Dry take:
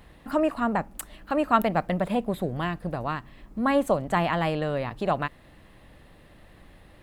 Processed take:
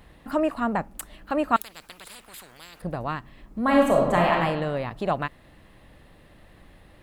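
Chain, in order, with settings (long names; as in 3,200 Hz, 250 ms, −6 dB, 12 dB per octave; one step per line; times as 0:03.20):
0:01.56–0:02.82: every bin compressed towards the loudest bin 10 to 1
0:03.61–0:04.33: thrown reverb, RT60 1.1 s, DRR −2 dB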